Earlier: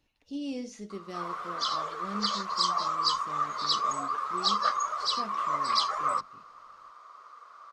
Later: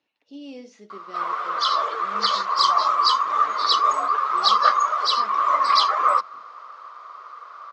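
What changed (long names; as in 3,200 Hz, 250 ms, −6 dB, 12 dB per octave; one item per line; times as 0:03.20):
background +10.0 dB
master: add band-pass filter 310–4,300 Hz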